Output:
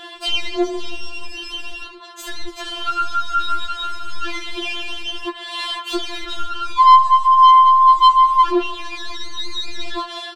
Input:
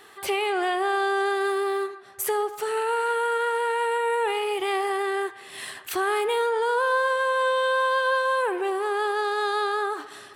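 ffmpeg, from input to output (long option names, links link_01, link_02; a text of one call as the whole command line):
ffmpeg -i in.wav -filter_complex "[0:a]asplit=2[link_01][link_02];[link_02]highpass=frequency=720:poles=1,volume=24dB,asoftclip=type=tanh:threshold=-13.5dB[link_03];[link_01][link_03]amix=inputs=2:normalize=0,lowpass=frequency=1500:poles=1,volume=-6dB,firequalizer=gain_entry='entry(610,0);entry(890,4);entry(2000,-8);entry(3100,8);entry(11000,-8)':delay=0.05:min_phase=1,afftfilt=real='re*4*eq(mod(b,16),0)':imag='im*4*eq(mod(b,16),0)':win_size=2048:overlap=0.75,volume=4dB" out.wav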